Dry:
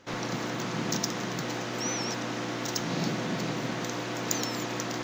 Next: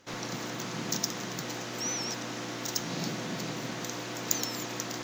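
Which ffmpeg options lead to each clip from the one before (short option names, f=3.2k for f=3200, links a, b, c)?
-af "aemphasis=mode=production:type=cd,volume=-4.5dB"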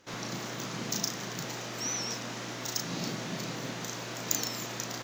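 -filter_complex "[0:a]asplit=2[a][b];[b]adelay=35,volume=-5dB[c];[a][c]amix=inputs=2:normalize=0,volume=-1.5dB"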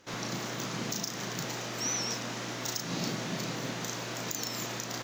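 -af "alimiter=limit=-20dB:level=0:latency=1:release=161,volume=1.5dB"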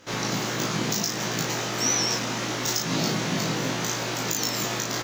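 -filter_complex "[0:a]asplit=2[a][b];[b]adelay=19,volume=-2dB[c];[a][c]amix=inputs=2:normalize=0,volume=6.5dB"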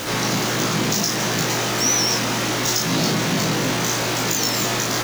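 -af "aeval=exprs='val(0)+0.5*0.0531*sgn(val(0))':c=same,volume=2.5dB"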